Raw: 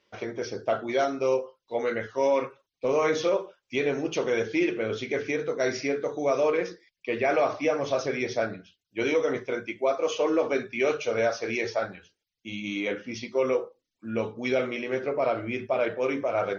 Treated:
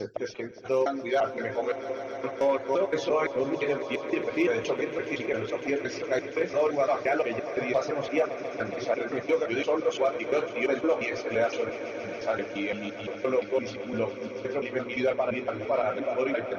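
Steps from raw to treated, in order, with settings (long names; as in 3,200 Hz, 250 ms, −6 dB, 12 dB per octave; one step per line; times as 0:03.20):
slices reordered back to front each 172 ms, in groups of 4
reverb reduction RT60 1.7 s
hard clipping −17 dBFS, distortion −32 dB
echo that builds up and dies away 139 ms, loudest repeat 5, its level −16 dB
dynamic equaliser 5,900 Hz, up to −5 dB, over −51 dBFS, Q 1.1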